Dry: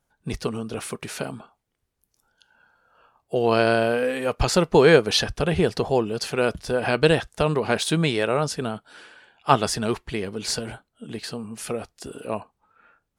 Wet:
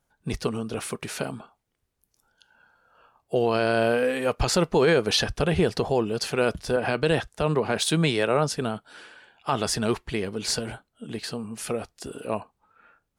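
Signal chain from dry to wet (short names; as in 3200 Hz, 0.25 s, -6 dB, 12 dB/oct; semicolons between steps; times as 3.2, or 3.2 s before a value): limiter -12 dBFS, peak gain reduction 10 dB; 6.76–8.58 three-band expander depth 40%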